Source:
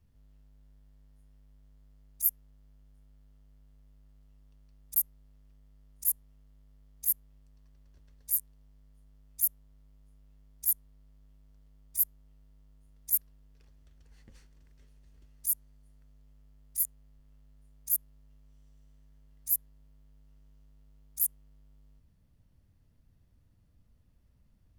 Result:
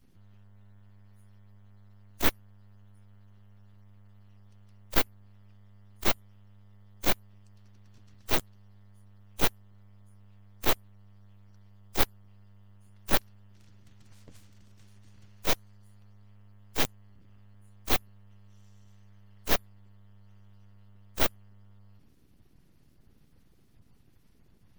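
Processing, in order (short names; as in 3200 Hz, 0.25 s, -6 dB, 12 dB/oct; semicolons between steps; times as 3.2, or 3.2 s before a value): bin magnitudes rounded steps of 30 dB; full-wave rectifier; gain +6 dB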